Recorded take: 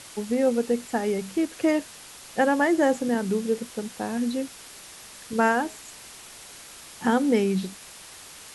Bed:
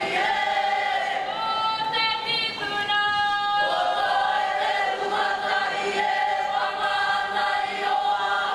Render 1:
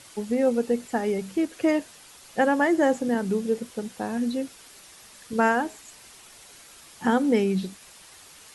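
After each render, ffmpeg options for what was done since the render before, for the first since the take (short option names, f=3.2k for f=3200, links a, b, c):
-af "afftdn=nr=6:nf=-45"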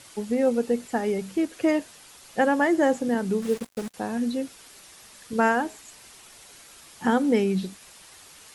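-filter_complex "[0:a]asettb=1/sr,asplit=3[a][b][c];[a]atrim=end=3.424[d];[b]atrim=start=3.42:end=3.94,asetpts=PTS-STARTPTS,afade=t=in:d=0.004:c=qsin,afade=t=out:st=0.516:d=0.004:c=qsin,acrusher=bits=5:mix=0:aa=0.5[e];[c]atrim=start=3.936[f];[d][e]acrossfade=d=0.004:c1=hsin:c2=qsin[g];[g][f]acrossfade=d=0.004:c1=qsin:c2=hsin"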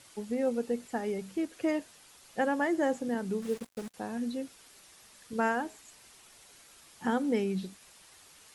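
-af "volume=-7.5dB"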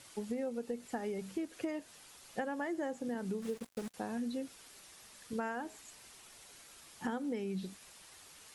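-af "acompressor=threshold=-34dB:ratio=10"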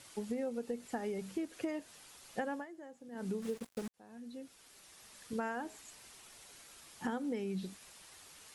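-filter_complex "[0:a]asplit=4[a][b][c][d];[a]atrim=end=2.66,asetpts=PTS-STARTPTS,afade=t=out:st=2.54:d=0.12:silence=0.211349[e];[b]atrim=start=2.66:end=3.11,asetpts=PTS-STARTPTS,volume=-13.5dB[f];[c]atrim=start=3.11:end=3.88,asetpts=PTS-STARTPTS,afade=t=in:d=0.12:silence=0.211349,afade=t=out:st=0.766:d=0.004:c=hsin[g];[d]atrim=start=3.88,asetpts=PTS-STARTPTS,afade=t=in:d=1.3[h];[e][f][g][h]concat=n=4:v=0:a=1"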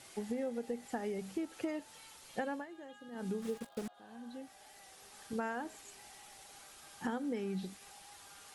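-filter_complex "[1:a]volume=-37.5dB[a];[0:a][a]amix=inputs=2:normalize=0"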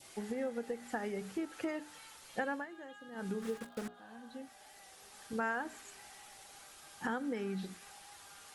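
-af "bandreject=f=60:t=h:w=6,bandreject=f=120:t=h:w=6,bandreject=f=180:t=h:w=6,bandreject=f=240:t=h:w=6,bandreject=f=300:t=h:w=6,bandreject=f=360:t=h:w=6,bandreject=f=420:t=h:w=6,adynamicequalizer=threshold=0.00126:dfrequency=1500:dqfactor=1.4:tfrequency=1500:tqfactor=1.4:attack=5:release=100:ratio=0.375:range=3.5:mode=boostabove:tftype=bell"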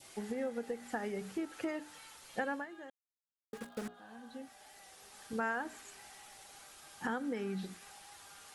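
-filter_complex "[0:a]asplit=3[a][b][c];[a]atrim=end=2.9,asetpts=PTS-STARTPTS,afade=t=out:st=2.896:d=0.004:c=hsin[d];[b]atrim=start=2.9:end=3.53,asetpts=PTS-STARTPTS,volume=0[e];[c]atrim=start=3.53,asetpts=PTS-STARTPTS,afade=t=in:d=0.004:c=hsin[f];[d][e][f]concat=n=3:v=0:a=1"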